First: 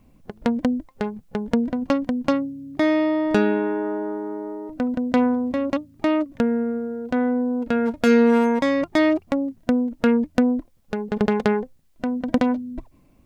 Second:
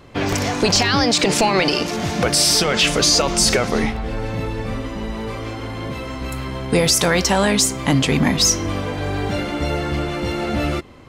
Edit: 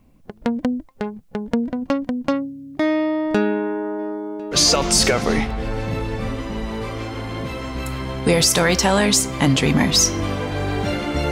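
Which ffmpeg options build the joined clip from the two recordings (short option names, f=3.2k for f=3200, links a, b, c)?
-filter_complex "[0:a]asplit=3[a][b][c];[a]afade=t=out:st=3.98:d=0.02[d];[b]aecho=1:1:1051:0.0708,afade=t=in:st=3.98:d=0.02,afade=t=out:st=4.57:d=0.02[e];[c]afade=t=in:st=4.57:d=0.02[f];[d][e][f]amix=inputs=3:normalize=0,apad=whole_dur=11.31,atrim=end=11.31,atrim=end=4.57,asetpts=PTS-STARTPTS[g];[1:a]atrim=start=2.97:end=9.77,asetpts=PTS-STARTPTS[h];[g][h]acrossfade=d=0.06:c1=tri:c2=tri"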